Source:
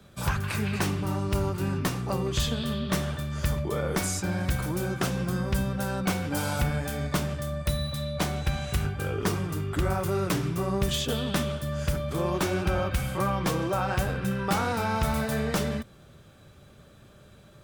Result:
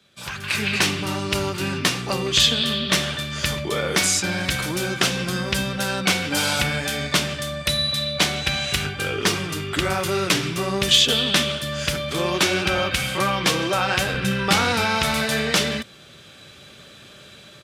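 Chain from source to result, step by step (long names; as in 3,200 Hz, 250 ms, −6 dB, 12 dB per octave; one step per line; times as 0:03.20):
automatic gain control gain up to 15 dB
meter weighting curve D
downsampling to 32,000 Hz
0:14.14–0:14.85: low-shelf EQ 130 Hz +9.5 dB
level −8 dB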